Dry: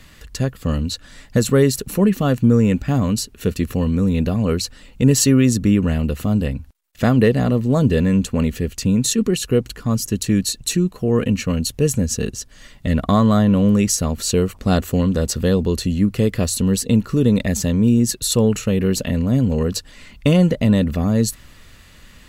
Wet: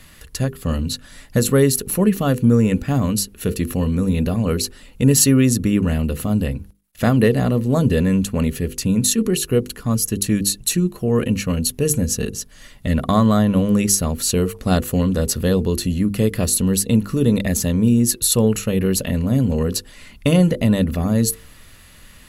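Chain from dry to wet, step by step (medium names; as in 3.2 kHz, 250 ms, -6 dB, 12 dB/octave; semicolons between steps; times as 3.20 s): peaking EQ 11 kHz +12 dB 0.31 oct; hum notches 50/100/150/200/250/300/350/400/450/500 Hz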